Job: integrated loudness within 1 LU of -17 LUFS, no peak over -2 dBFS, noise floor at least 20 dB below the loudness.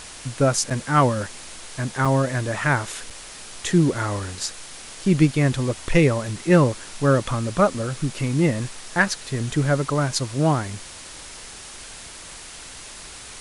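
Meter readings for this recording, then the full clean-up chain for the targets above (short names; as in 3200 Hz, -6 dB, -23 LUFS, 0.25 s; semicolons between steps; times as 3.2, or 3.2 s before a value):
dropouts 3; longest dropout 5.7 ms; noise floor -40 dBFS; noise floor target -42 dBFS; loudness -22.0 LUFS; peak -4.0 dBFS; loudness target -17.0 LUFS
-> interpolate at 0.7/2.05/3.1, 5.7 ms; denoiser 6 dB, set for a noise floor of -40 dBFS; gain +5 dB; limiter -2 dBFS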